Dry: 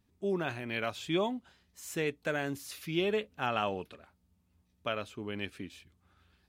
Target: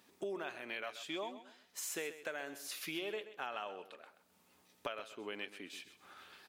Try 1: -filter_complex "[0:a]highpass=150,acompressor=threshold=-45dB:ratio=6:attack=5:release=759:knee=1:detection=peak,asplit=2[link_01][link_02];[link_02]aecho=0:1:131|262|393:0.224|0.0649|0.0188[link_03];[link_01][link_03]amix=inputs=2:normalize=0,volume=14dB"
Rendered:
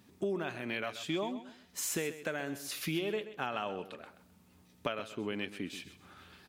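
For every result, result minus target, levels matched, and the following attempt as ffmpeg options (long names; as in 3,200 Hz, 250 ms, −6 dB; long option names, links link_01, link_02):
125 Hz band +12.0 dB; downward compressor: peak gain reduction −5.5 dB
-filter_complex "[0:a]highpass=440,acompressor=threshold=-45dB:ratio=6:attack=5:release=759:knee=1:detection=peak,asplit=2[link_01][link_02];[link_02]aecho=0:1:131|262|393:0.224|0.0649|0.0188[link_03];[link_01][link_03]amix=inputs=2:normalize=0,volume=14dB"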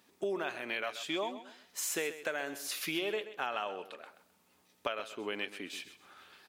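downward compressor: peak gain reduction −6 dB
-filter_complex "[0:a]highpass=440,acompressor=threshold=-52.5dB:ratio=6:attack=5:release=759:knee=1:detection=peak,asplit=2[link_01][link_02];[link_02]aecho=0:1:131|262|393:0.224|0.0649|0.0188[link_03];[link_01][link_03]amix=inputs=2:normalize=0,volume=14dB"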